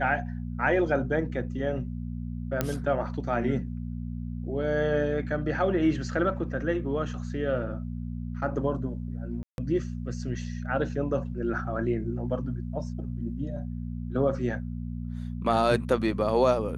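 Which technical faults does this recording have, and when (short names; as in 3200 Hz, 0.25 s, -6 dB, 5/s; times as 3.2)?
hum 60 Hz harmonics 4 -34 dBFS
2.61 pop -11 dBFS
9.43–9.58 gap 0.151 s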